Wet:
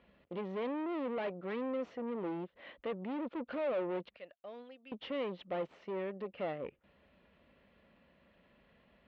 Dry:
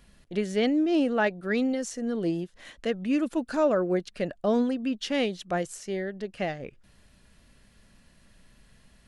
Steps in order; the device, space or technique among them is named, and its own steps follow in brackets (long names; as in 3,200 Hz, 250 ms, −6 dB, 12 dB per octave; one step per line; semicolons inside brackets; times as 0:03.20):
0:04.16–0:04.92: first-order pre-emphasis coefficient 0.97
guitar amplifier (tube saturation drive 35 dB, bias 0.5; bass and treble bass −5 dB, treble −14 dB; loudspeaker in its box 77–3,500 Hz, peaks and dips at 120 Hz −10 dB, 540 Hz +6 dB, 1,600 Hz −6 dB)